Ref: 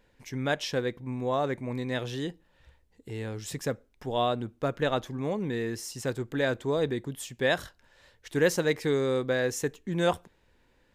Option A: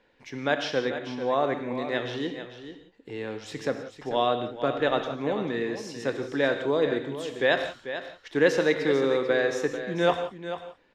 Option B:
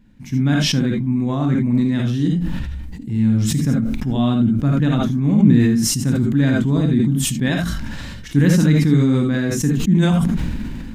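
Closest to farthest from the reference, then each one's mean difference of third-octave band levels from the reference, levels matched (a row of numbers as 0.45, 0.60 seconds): A, B; 6.5, 8.5 decibels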